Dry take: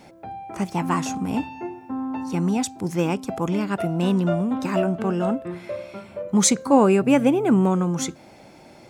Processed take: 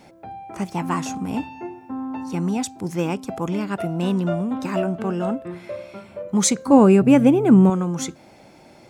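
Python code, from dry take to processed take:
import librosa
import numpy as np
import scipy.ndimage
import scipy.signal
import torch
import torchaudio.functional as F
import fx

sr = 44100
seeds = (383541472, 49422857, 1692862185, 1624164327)

y = fx.low_shelf(x, sr, hz=270.0, db=11.0, at=(6.68, 7.7))
y = y * librosa.db_to_amplitude(-1.0)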